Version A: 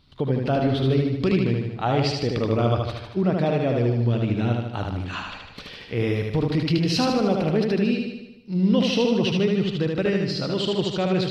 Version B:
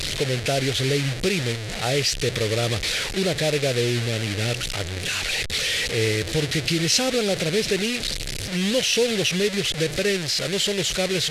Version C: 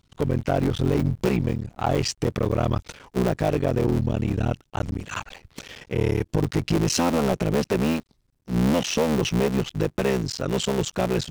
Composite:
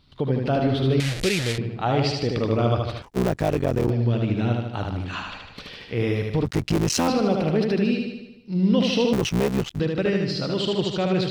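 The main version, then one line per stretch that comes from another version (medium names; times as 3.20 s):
A
1.00–1.58 s: from B
3.02–3.90 s: from C
6.45–7.08 s: from C
9.13–9.80 s: from C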